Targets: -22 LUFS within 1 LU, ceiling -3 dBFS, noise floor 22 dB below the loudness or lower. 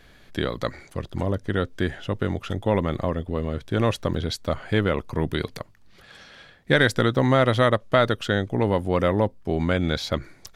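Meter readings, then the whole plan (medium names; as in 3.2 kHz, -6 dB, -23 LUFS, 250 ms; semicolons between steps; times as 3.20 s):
dropouts 1; longest dropout 3.6 ms; loudness -24.0 LUFS; peak level -4.0 dBFS; loudness target -22.0 LUFS
-> interpolate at 4.14 s, 3.6 ms; trim +2 dB; peak limiter -3 dBFS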